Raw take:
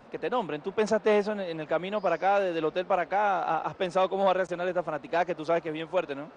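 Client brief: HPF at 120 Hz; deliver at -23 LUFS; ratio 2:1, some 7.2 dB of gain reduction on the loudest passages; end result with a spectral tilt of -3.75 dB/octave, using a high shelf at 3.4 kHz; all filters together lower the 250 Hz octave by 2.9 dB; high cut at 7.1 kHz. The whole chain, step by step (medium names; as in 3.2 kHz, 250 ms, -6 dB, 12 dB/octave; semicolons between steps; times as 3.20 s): high-pass 120 Hz; low-pass 7.1 kHz; peaking EQ 250 Hz -4 dB; treble shelf 3.4 kHz -8 dB; compression 2:1, threshold -34 dBFS; trim +12 dB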